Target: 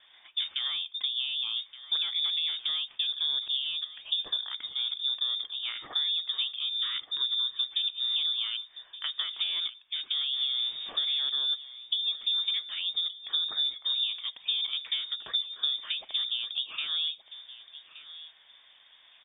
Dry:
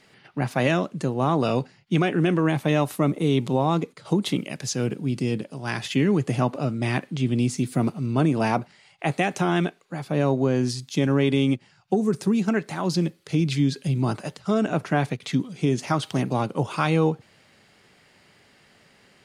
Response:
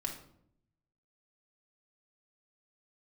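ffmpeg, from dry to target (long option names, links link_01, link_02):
-filter_complex "[0:a]asettb=1/sr,asplit=3[link_01][link_02][link_03];[link_01]atrim=end=10.334[link_04];[link_02]atrim=start=10.33:end=11.31,asetpts=PTS-STARTPTS,afade=type=in:duration=0.004:curve=qsin,afade=type=out:start_time=0.976:duration=0.004:curve=qsin,aeval=exprs='val(0)+0.5*0.0447*sgn(val(0))':channel_layout=same[link_05];[link_03]atrim=start=11.306[link_06];[link_04][link_05]acrossfade=duration=0.004:curve1=hsin:curve2=qsin[link_07];[link_07][link_06]acrossfade=duration=0.004:curve1=qsin:curve2=hsin,highpass=250,acompressor=threshold=-31dB:ratio=6,tiltshelf=frequency=680:gain=6.5,lowpass=frequency=3200:width_type=q:width=0.5098,lowpass=frequency=3200:width_type=q:width=0.6013,lowpass=frequency=3200:width_type=q:width=0.9,lowpass=frequency=3200:width_type=q:width=2.563,afreqshift=-3800,asettb=1/sr,asplit=3[link_08][link_09][link_10];[link_08]atrim=end=6.564[link_11];[link_09]atrim=start=6.56:end=7.61,asetpts=PTS-STARTPTS,afade=type=in:duration=0.004:curve=qsin,afade=type=out:start_time=1.046:duration=0.004:curve=qsin,asuperstop=centerf=650:order=20:qfactor=1.3[link_12];[link_10]atrim=start=7.606[link_13];[link_11][link_12]acrossfade=duration=0.004:curve1=hsin:curve2=qsin[link_14];[link_14][link_13]acrossfade=duration=0.004:curve1=qsin:curve2=hsin,aecho=1:1:1172|2344:0.168|0.0302"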